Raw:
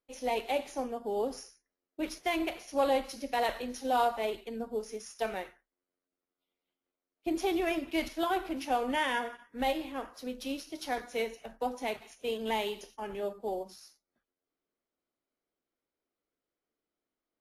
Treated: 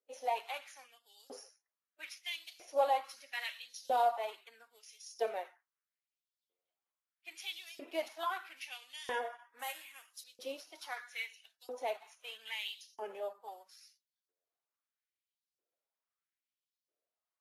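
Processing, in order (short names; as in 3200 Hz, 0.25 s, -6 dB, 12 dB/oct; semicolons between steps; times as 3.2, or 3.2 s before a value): bin magnitudes rounded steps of 15 dB; 9.59–10.24 resonant high shelf 5800 Hz +9.5 dB, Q 1.5; LFO high-pass saw up 0.77 Hz 420–5200 Hz; gain -6.5 dB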